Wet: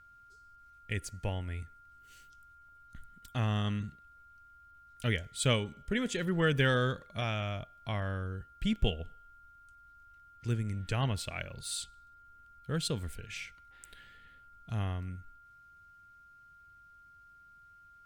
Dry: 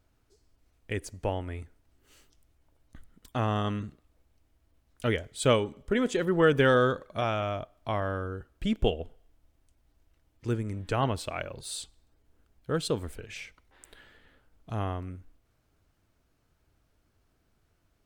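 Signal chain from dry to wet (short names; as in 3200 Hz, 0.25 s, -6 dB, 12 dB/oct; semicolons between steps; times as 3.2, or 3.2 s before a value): whine 1400 Hz -49 dBFS; band shelf 600 Hz -9 dB 2.7 oct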